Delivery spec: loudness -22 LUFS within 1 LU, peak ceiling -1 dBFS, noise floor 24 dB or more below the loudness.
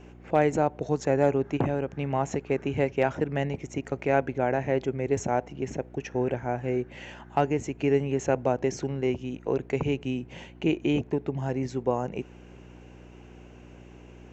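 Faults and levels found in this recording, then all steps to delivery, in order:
hum 60 Hz; highest harmonic 360 Hz; hum level -46 dBFS; loudness -28.0 LUFS; peak level -10.5 dBFS; loudness target -22.0 LUFS
-> de-hum 60 Hz, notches 6; trim +6 dB

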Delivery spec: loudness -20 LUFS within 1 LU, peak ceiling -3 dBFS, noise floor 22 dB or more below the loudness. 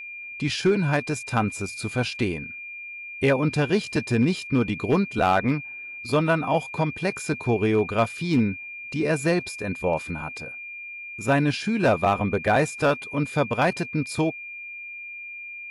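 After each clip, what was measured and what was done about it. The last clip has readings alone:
clipped samples 0.3%; clipping level -12.5 dBFS; steady tone 2.4 kHz; tone level -35 dBFS; loudness -24.5 LUFS; peak level -12.5 dBFS; loudness target -20.0 LUFS
-> clip repair -12.5 dBFS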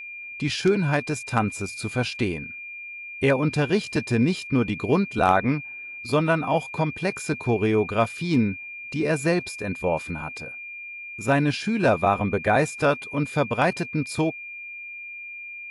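clipped samples 0.0%; steady tone 2.4 kHz; tone level -35 dBFS
-> band-stop 2.4 kHz, Q 30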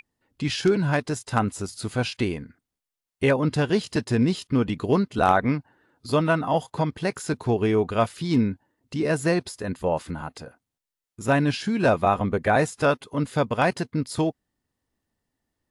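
steady tone not found; loudness -24.5 LUFS; peak level -4.5 dBFS; loudness target -20.0 LUFS
-> trim +4.5 dB; peak limiter -3 dBFS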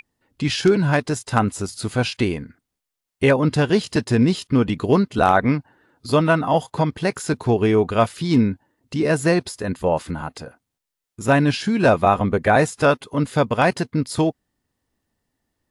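loudness -20.0 LUFS; peak level -3.0 dBFS; noise floor -83 dBFS

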